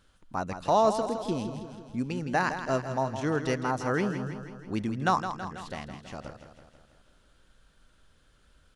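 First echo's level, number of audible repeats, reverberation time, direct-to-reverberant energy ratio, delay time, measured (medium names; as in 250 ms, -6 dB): -9.5 dB, 6, no reverb, no reverb, 163 ms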